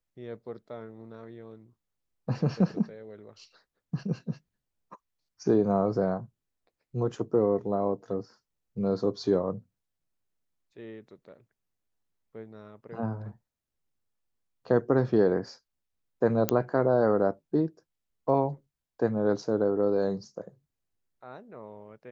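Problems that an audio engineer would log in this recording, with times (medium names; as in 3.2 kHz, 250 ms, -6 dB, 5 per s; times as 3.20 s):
16.49 s: pop -8 dBFS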